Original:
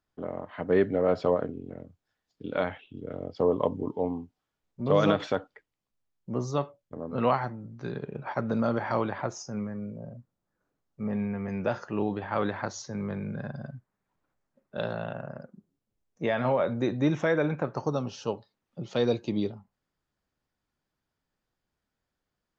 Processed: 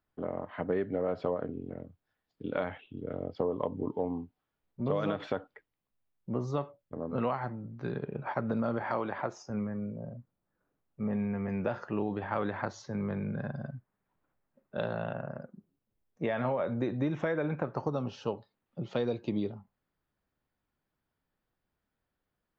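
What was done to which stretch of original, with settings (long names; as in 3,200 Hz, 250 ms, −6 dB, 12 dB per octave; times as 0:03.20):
0:08.82–0:09.50: high-pass filter 230 Hz 6 dB per octave
whole clip: parametric band 6,400 Hz −12 dB 1.1 octaves; downward compressor 6 to 1, threshold −27 dBFS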